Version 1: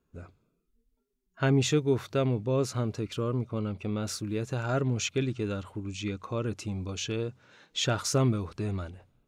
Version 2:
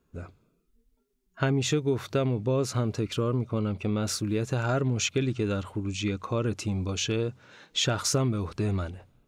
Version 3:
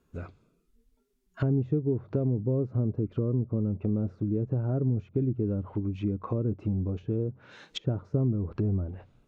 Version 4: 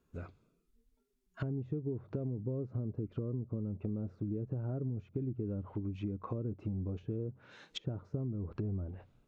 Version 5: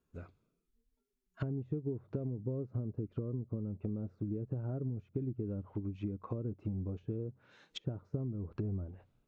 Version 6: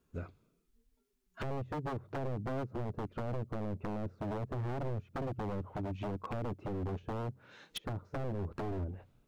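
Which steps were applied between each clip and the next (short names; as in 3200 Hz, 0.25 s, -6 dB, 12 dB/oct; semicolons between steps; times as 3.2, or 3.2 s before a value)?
compressor 5:1, threshold -27 dBFS, peak gain reduction 7.5 dB; gain +5 dB
treble ducked by the level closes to 380 Hz, closed at -26 dBFS; gain +1 dB
compressor, threshold -27 dBFS, peak gain reduction 6.5 dB; gain -5.5 dB
upward expander 1.5:1, over -47 dBFS; gain +1 dB
wavefolder -37.5 dBFS; gain +6 dB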